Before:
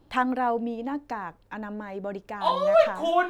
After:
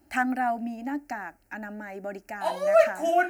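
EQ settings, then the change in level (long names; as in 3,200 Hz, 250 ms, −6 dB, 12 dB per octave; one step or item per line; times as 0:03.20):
high-pass filter 47 Hz
high-shelf EQ 2,600 Hz +11.5 dB
phaser with its sweep stopped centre 710 Hz, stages 8
0.0 dB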